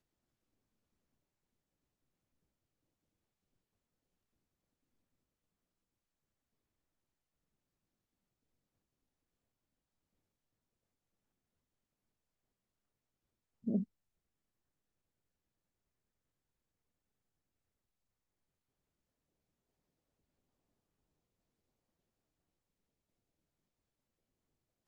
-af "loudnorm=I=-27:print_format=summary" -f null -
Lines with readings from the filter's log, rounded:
Input Integrated:    -39.2 LUFS
Input True Peak:     -22.5 dBTP
Input LRA:             0.0 LU
Input Threshold:     -49.2 LUFS